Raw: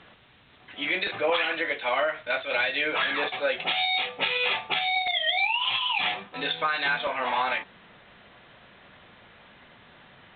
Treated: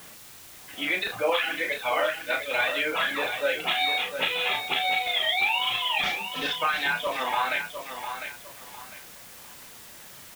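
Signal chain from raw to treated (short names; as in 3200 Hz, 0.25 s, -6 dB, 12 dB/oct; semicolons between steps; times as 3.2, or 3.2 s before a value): 6.03–6.54 CVSD 32 kbps; reverb removal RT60 0.99 s; requantised 8-bit, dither triangular; doubler 35 ms -7 dB; lo-fi delay 0.702 s, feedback 35%, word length 8-bit, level -8 dB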